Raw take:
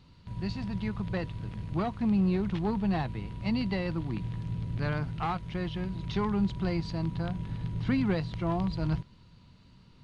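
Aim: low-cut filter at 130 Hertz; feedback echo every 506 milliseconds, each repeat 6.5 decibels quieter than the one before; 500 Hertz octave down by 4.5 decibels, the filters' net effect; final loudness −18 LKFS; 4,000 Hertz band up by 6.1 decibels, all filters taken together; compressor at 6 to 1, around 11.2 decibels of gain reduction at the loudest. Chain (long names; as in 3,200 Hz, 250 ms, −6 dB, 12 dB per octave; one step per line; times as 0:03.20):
high-pass filter 130 Hz
parametric band 500 Hz −6.5 dB
parametric band 4,000 Hz +7.5 dB
downward compressor 6 to 1, threshold −37 dBFS
repeating echo 506 ms, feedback 47%, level −6.5 dB
level +22.5 dB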